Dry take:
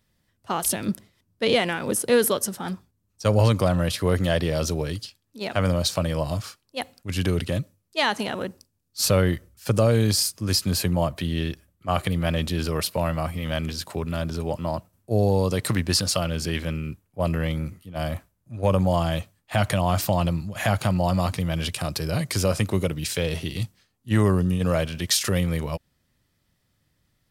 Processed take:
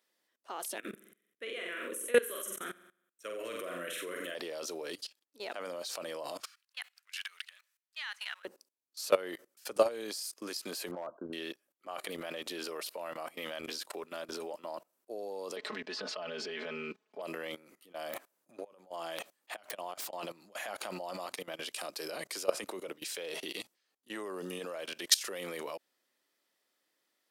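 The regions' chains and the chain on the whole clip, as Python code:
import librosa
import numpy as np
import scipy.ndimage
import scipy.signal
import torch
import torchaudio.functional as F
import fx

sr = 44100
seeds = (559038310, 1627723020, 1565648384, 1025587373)

y = fx.chain(x, sr, fx.low_shelf(hz=210.0, db=-7.0),
    fx.fixed_phaser(hz=2000.0, stages=4),
    fx.room_flutter(wall_m=7.8, rt60_s=0.55), at=(0.78, 4.35))
y = fx.chain(y, sr, fx.law_mismatch(coded='mu'),
    fx.highpass(hz=1500.0, slope=24),
    fx.high_shelf(hz=3400.0, db=-11.0), at=(6.45, 8.45))
y = fx.chain(y, sr, fx.brickwall_lowpass(high_hz=1600.0),
    fx.overload_stage(gain_db=16.0), at=(10.91, 11.33))
y = fx.chain(y, sr, fx.air_absorb(metres=190.0),
    fx.comb(ms=4.7, depth=0.92),
    fx.band_squash(depth_pct=100), at=(15.56, 17.22))
y = fx.chain(y, sr, fx.over_compress(threshold_db=-28.0, ratio=-0.5),
    fx.overflow_wrap(gain_db=14.5), at=(18.13, 20.23))
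y = fx.chain(y, sr, fx.highpass(hz=86.0, slope=12),
    fx.band_widen(depth_pct=40), at=(21.28, 22.97))
y = scipy.signal.sosfilt(scipy.signal.butter(4, 340.0, 'highpass', fs=sr, output='sos'), y)
y = fx.level_steps(y, sr, step_db=20)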